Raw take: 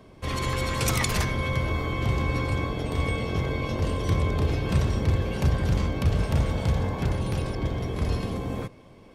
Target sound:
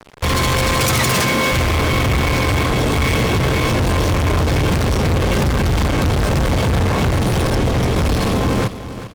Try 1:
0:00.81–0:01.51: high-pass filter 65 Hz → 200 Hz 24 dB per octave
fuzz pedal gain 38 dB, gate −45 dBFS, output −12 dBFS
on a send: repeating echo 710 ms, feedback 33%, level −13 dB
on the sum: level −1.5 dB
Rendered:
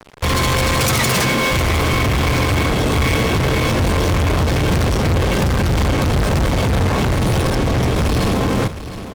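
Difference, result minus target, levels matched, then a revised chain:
echo 314 ms late
0:00.81–0:01.51: high-pass filter 65 Hz → 200 Hz 24 dB per octave
fuzz pedal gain 38 dB, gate −45 dBFS, output −12 dBFS
on a send: repeating echo 396 ms, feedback 33%, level −13 dB
on the sum: level −1.5 dB

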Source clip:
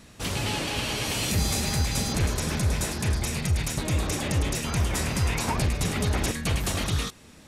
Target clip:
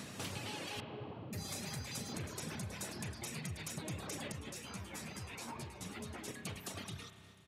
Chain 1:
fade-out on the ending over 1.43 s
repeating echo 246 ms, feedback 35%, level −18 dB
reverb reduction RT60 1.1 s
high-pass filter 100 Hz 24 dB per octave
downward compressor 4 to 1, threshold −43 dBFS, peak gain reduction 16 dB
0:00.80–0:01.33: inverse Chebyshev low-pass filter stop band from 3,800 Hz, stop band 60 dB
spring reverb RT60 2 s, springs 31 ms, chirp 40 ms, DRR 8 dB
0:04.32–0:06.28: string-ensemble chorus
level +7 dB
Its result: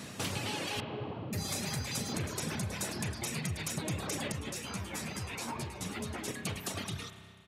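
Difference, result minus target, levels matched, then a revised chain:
downward compressor: peak gain reduction −7 dB
fade-out on the ending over 1.43 s
repeating echo 246 ms, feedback 35%, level −18 dB
reverb reduction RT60 1.1 s
high-pass filter 100 Hz 24 dB per octave
downward compressor 4 to 1, threshold −52.5 dBFS, peak gain reduction 23 dB
0:00.80–0:01.33: inverse Chebyshev low-pass filter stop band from 3,800 Hz, stop band 60 dB
spring reverb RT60 2 s, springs 31 ms, chirp 40 ms, DRR 8 dB
0:04.32–0:06.28: string-ensemble chorus
level +7 dB

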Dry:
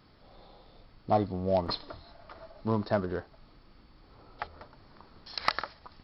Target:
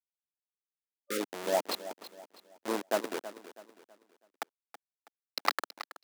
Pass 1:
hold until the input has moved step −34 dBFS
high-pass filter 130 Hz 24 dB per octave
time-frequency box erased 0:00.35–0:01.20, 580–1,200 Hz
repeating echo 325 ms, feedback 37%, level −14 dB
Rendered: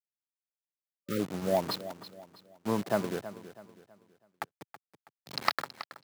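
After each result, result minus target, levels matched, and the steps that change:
125 Hz band +15.5 dB; hold until the input has moved: distortion −11 dB
change: high-pass filter 280 Hz 24 dB per octave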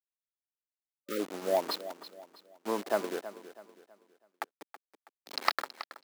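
hold until the input has moved: distortion −11 dB
change: hold until the input has moved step −26 dBFS

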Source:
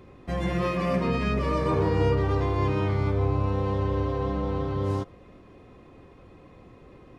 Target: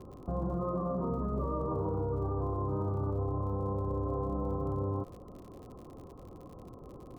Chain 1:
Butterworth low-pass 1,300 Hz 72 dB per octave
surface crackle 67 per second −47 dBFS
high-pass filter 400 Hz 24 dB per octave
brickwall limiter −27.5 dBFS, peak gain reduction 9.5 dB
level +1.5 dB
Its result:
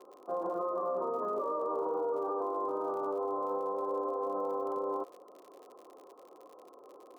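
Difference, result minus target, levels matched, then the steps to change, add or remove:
500 Hz band +3.5 dB
remove: high-pass filter 400 Hz 24 dB per octave

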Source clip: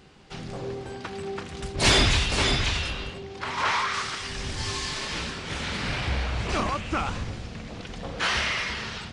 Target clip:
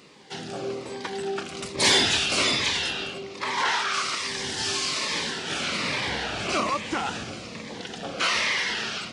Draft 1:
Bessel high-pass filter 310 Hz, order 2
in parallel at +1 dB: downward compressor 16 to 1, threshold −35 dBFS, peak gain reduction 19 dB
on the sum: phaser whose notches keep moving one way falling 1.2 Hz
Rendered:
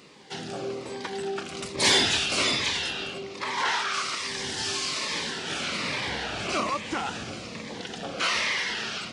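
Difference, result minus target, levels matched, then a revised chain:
downward compressor: peak gain reduction +6.5 dB
Bessel high-pass filter 310 Hz, order 2
in parallel at +1 dB: downward compressor 16 to 1, threshold −28 dBFS, peak gain reduction 12 dB
on the sum: phaser whose notches keep moving one way falling 1.2 Hz

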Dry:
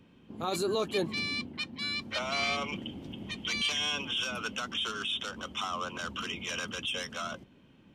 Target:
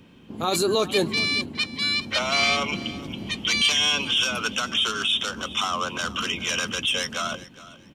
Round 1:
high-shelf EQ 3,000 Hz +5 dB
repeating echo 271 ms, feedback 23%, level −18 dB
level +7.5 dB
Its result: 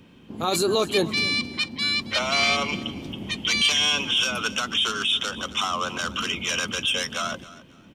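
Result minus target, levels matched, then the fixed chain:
echo 143 ms early
high-shelf EQ 3,000 Hz +5 dB
repeating echo 414 ms, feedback 23%, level −18 dB
level +7.5 dB

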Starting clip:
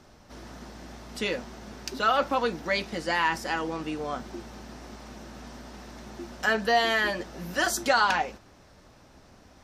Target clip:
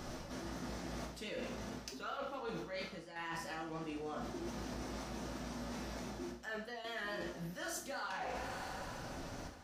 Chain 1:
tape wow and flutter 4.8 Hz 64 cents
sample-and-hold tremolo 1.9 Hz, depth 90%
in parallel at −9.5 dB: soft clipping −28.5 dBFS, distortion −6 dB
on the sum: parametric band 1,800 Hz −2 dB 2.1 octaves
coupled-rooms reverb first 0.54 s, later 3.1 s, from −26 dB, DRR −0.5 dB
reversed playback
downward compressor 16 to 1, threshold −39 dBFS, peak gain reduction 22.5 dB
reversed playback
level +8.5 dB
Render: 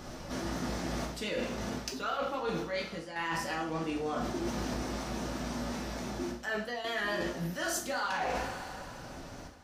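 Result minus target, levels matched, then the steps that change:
downward compressor: peak gain reduction −9 dB
change: downward compressor 16 to 1, threshold −48.5 dBFS, peak gain reduction 31.5 dB

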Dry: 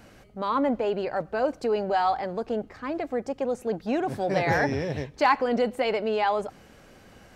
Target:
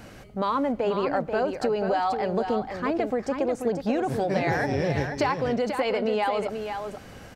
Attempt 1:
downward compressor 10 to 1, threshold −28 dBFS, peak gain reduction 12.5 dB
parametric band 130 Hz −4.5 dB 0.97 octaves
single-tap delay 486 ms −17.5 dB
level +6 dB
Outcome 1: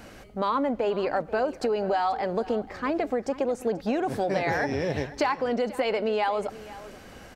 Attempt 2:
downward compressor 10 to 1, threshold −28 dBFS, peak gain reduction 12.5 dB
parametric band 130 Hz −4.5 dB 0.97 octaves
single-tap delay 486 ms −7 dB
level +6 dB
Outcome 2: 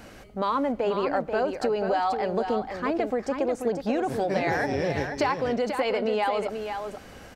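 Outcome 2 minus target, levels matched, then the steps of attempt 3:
125 Hz band −4.0 dB
downward compressor 10 to 1, threshold −28 dBFS, peak gain reduction 12.5 dB
parametric band 130 Hz +2 dB 0.97 octaves
single-tap delay 486 ms −7 dB
level +6 dB

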